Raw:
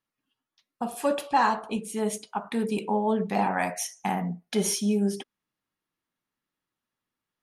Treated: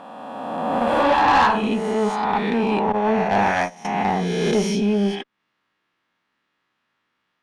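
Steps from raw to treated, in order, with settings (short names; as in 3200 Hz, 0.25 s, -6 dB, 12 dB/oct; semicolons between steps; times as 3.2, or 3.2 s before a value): spectral swells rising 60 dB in 1.78 s; 0.84–1.68 doubler 29 ms -4 dB; 2.92–3.85 gate -23 dBFS, range -17 dB; LPF 2900 Hz 12 dB/oct; low shelf 69 Hz -11 dB; tube stage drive 18 dB, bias 0.25; mismatched tape noise reduction encoder only; gain +7 dB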